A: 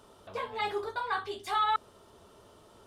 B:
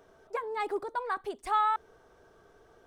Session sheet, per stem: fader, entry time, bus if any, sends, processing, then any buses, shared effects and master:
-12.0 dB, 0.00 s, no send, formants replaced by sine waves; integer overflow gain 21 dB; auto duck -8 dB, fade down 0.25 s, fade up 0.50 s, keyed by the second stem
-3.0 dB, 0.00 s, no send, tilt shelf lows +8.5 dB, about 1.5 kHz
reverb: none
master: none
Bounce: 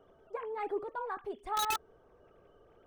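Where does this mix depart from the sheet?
stem A -12.0 dB -> -1.0 dB; stem B -3.0 dB -> -9.5 dB

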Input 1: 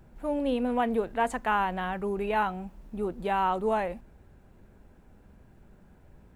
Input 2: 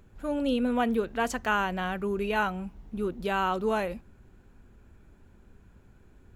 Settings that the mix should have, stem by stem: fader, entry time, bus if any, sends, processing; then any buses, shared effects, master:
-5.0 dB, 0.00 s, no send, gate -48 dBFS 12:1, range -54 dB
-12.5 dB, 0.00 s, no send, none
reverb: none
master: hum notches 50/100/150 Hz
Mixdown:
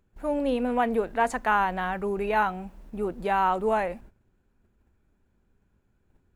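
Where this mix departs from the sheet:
stem 1 -5.0 dB -> +2.5 dB; stem 2: polarity flipped

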